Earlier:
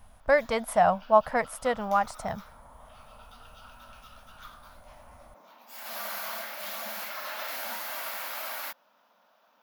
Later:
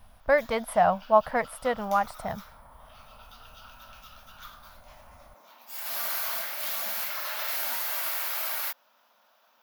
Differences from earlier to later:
speech: add parametric band 6,600 Hz −12.5 dB 0.5 octaves
background: add spectral tilt +2 dB per octave

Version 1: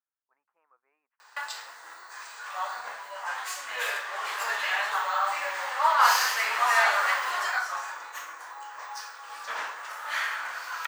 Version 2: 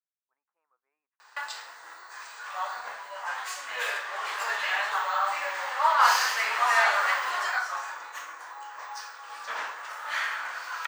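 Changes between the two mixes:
speech −9.0 dB
background: add parametric band 15,000 Hz −8.5 dB 0.81 octaves

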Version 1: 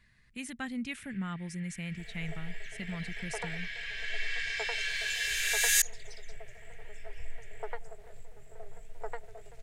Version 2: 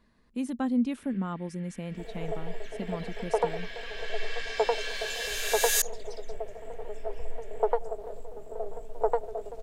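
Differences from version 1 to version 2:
first sound +4.5 dB
second sound +3.5 dB
master: add graphic EQ with 10 bands 125 Hz −9 dB, 250 Hz +11 dB, 500 Hz +10 dB, 1,000 Hz +9 dB, 2,000 Hz −12 dB, 8,000 Hz −5 dB

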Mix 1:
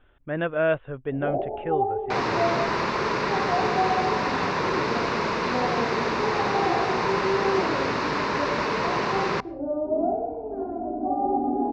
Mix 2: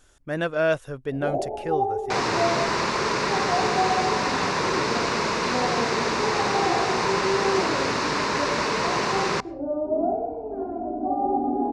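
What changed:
speech: remove Butterworth low-pass 3,400 Hz 72 dB per octave
master: remove high-frequency loss of the air 160 metres

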